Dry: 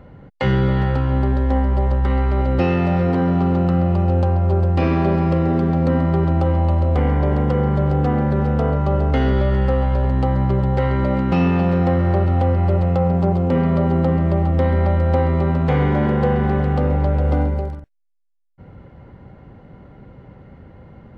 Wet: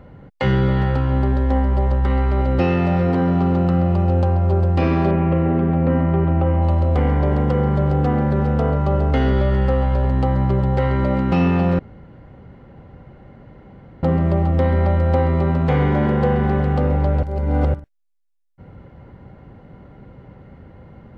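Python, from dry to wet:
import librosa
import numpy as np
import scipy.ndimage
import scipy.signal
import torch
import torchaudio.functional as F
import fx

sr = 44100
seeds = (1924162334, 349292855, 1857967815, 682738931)

y = fx.cheby1_lowpass(x, sr, hz=2700.0, order=3, at=(5.11, 6.62))
y = fx.edit(y, sr, fx.room_tone_fill(start_s=11.79, length_s=2.24),
    fx.reverse_span(start_s=17.23, length_s=0.51), tone=tone)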